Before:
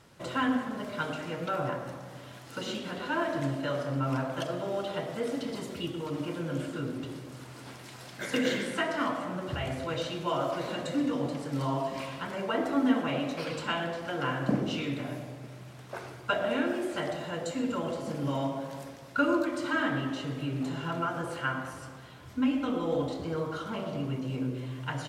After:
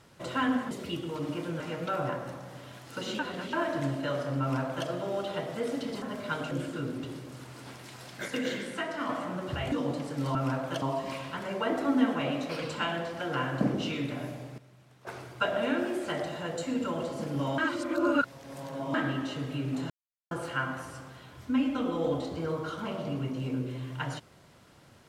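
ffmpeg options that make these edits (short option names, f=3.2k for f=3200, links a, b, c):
-filter_complex "[0:a]asplit=18[a][b][c][d][e][f][g][h][i][j][k][l][m][n][o][p][q][r];[a]atrim=end=0.712[s];[b]atrim=start=5.618:end=6.512[t];[c]atrim=start=1.198:end=2.792[u];[d]atrim=start=2.788:end=3.132,asetpts=PTS-STARTPTS,areverse[v];[e]atrim=start=3.128:end=5.622[w];[f]atrim=start=0.708:end=1.202[x];[g]atrim=start=6.508:end=8.282[y];[h]atrim=start=8.278:end=9.092,asetpts=PTS-STARTPTS,volume=-4dB[z];[i]atrim=start=9.088:end=9.722[aa];[j]atrim=start=11.068:end=11.702[ab];[k]atrim=start=4.008:end=4.482[ac];[l]atrim=start=11.698:end=15.462[ad];[m]atrim=start=15.458:end=15.952,asetpts=PTS-STARTPTS,volume=-11dB[ae];[n]atrim=start=15.948:end=18.462[af];[o]atrim=start=18.458:end=19.822,asetpts=PTS-STARTPTS,areverse[ag];[p]atrim=start=19.818:end=20.78,asetpts=PTS-STARTPTS,afade=t=out:st=0.958:d=0.004:c=hsin[ah];[q]atrim=start=20.78:end=21.19,asetpts=PTS-STARTPTS,volume=0[ai];[r]atrim=start=21.19,asetpts=PTS-STARTPTS,afade=t=in:d=0.004:c=hsin[aj];[s][t]acrossfade=d=0.004:c1=hsin:c2=hsin[ak];[ak][u]acrossfade=d=0.004:c1=hsin:c2=hsin[al];[al][v]acrossfade=d=0.004:c1=hsin:c2=hsin[am];[am][w]acrossfade=d=0.004:c1=hsin:c2=hsin[an];[an][x]acrossfade=d=0.004:c1=hsin:c2=hsin[ao];[ao][y]acrossfade=d=0.004:c1=hsin:c2=hsin[ap];[ap][z]acrossfade=d=0.004:c1=hsin:c2=hsin[aq];[aq][aa]acrossfade=d=0.004:c1=hsin:c2=hsin[ar];[ar][ab]acrossfade=d=0.004:c1=hsin:c2=hsin[as];[as][ac]acrossfade=d=0.004:c1=hsin:c2=hsin[at];[at][ad]acrossfade=d=0.004:c1=hsin:c2=hsin[au];[au][ae]acrossfade=d=0.004:c1=hsin:c2=hsin[av];[av][af]acrossfade=d=0.004:c1=hsin:c2=hsin[aw];[aw][ag]acrossfade=d=0.004:c1=hsin:c2=hsin[ax];[ah][ai][aj]concat=n=3:v=0:a=1[ay];[ax][ay]acrossfade=d=0.004:c1=hsin:c2=hsin"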